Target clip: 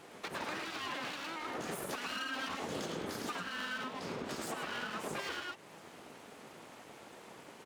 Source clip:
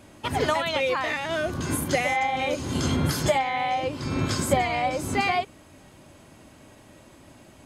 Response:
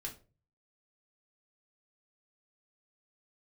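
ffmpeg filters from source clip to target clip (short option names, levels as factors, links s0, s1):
-filter_complex "[0:a]highshelf=f=4300:g=-7.5,asplit=2[s0][s1];[s1]aecho=0:1:108:0.631[s2];[s0][s2]amix=inputs=2:normalize=0,aeval=exprs='abs(val(0))':c=same,highpass=170,acompressor=threshold=0.0141:ratio=2.5,alimiter=level_in=2.11:limit=0.0631:level=0:latency=1:release=417,volume=0.473,volume=1.19"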